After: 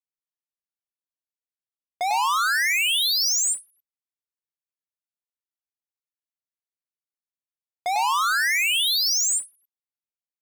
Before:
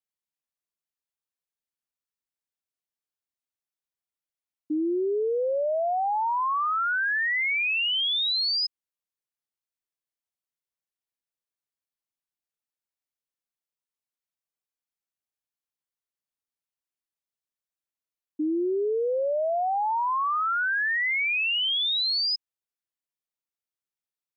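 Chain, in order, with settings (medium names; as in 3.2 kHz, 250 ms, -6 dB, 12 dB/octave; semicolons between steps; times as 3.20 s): waveshaping leveller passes 5; delay 231 ms -3.5 dB; speed mistake 33 rpm record played at 78 rpm; endings held to a fixed fall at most 280 dB/s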